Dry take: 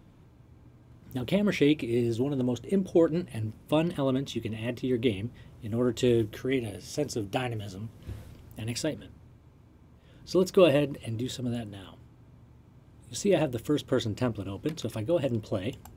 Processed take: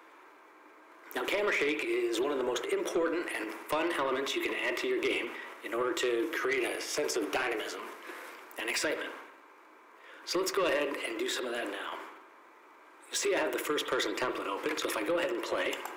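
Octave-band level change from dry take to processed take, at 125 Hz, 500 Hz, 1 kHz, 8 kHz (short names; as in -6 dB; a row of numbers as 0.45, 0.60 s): -26.0, -3.5, +4.5, +3.5 dB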